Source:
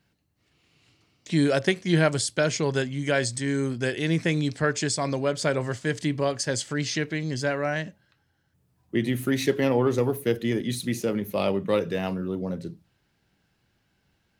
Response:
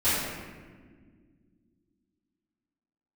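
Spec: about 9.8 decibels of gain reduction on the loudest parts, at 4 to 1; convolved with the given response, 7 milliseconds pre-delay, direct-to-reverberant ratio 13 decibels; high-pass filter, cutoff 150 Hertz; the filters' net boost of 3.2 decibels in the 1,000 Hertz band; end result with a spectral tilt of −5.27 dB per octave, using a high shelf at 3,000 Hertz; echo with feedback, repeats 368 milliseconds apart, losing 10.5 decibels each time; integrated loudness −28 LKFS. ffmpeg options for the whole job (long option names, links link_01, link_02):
-filter_complex "[0:a]highpass=150,equalizer=frequency=1000:width_type=o:gain=5.5,highshelf=frequency=3000:gain=-6.5,acompressor=threshold=-29dB:ratio=4,aecho=1:1:368|736|1104:0.299|0.0896|0.0269,asplit=2[link_01][link_02];[1:a]atrim=start_sample=2205,adelay=7[link_03];[link_02][link_03]afir=irnorm=-1:irlink=0,volume=-27dB[link_04];[link_01][link_04]amix=inputs=2:normalize=0,volume=4.5dB"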